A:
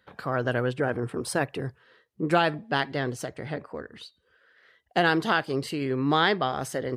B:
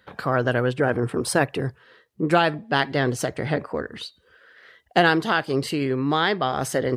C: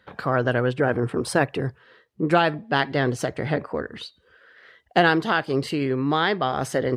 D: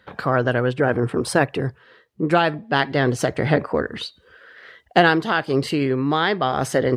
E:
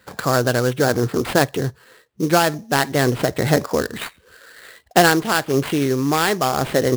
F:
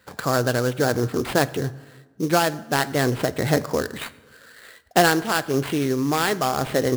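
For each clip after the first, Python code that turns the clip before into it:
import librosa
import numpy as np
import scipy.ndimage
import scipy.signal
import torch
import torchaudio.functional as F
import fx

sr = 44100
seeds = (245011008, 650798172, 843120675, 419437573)

y1 = fx.rider(x, sr, range_db=5, speed_s=0.5)
y1 = y1 * 10.0 ** (4.0 / 20.0)
y2 = fx.high_shelf(y1, sr, hz=6900.0, db=-8.5)
y3 = fx.rider(y2, sr, range_db=10, speed_s=0.5)
y3 = y3 * 10.0 ** (2.5 / 20.0)
y4 = fx.sample_hold(y3, sr, seeds[0], rate_hz=6000.0, jitter_pct=20)
y4 = y4 * 10.0 ** (1.5 / 20.0)
y5 = fx.rev_fdn(y4, sr, rt60_s=1.3, lf_ratio=1.25, hf_ratio=0.7, size_ms=68.0, drr_db=16.0)
y5 = y5 * 10.0 ** (-3.5 / 20.0)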